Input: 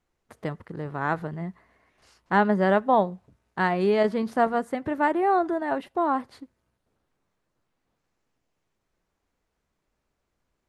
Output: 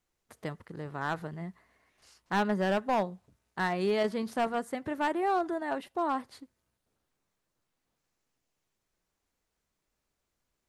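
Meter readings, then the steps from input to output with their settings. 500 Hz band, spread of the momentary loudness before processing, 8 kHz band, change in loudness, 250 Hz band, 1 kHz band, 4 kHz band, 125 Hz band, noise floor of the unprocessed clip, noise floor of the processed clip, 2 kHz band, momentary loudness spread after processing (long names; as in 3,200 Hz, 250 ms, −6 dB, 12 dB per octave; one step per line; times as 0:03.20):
−7.0 dB, 15 LU, can't be measured, −7.0 dB, −6.5 dB, −7.0 dB, 0.0 dB, −6.5 dB, −79 dBFS, −83 dBFS, −6.0 dB, 14 LU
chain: high-shelf EQ 3,200 Hz +10 dB
hard clipping −15.5 dBFS, distortion −14 dB
level −6.5 dB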